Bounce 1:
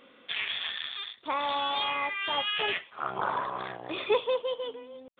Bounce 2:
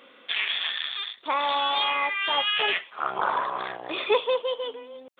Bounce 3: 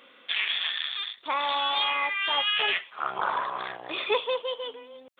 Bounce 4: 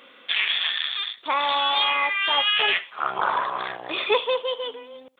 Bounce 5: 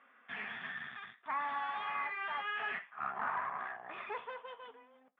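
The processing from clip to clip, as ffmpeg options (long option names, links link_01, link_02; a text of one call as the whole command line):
ffmpeg -i in.wav -af "highpass=frequency=420:poles=1,volume=5.5dB" out.wav
ffmpeg -i in.wav -af "equalizer=frequency=380:width=0.41:gain=-4.5" out.wav
ffmpeg -i in.wav -af "aecho=1:1:76:0.0668,volume=4.5dB" out.wav
ffmpeg -i in.wav -af "aeval=exprs='(tanh(12.6*val(0)+0.65)-tanh(0.65))/12.6':channel_layout=same,flanger=delay=7:depth=2.2:regen=-63:speed=1.4:shape=triangular,highpass=190,equalizer=frequency=220:width_type=q:width=4:gain=4,equalizer=frequency=320:width_type=q:width=4:gain=-10,equalizer=frequency=520:width_type=q:width=4:gain=-9,equalizer=frequency=730:width_type=q:width=4:gain=6,equalizer=frequency=1200:width_type=q:width=4:gain=5,equalizer=frequency=1700:width_type=q:width=4:gain=8,lowpass=frequency=2200:width=0.5412,lowpass=frequency=2200:width=1.3066,volume=-7.5dB" out.wav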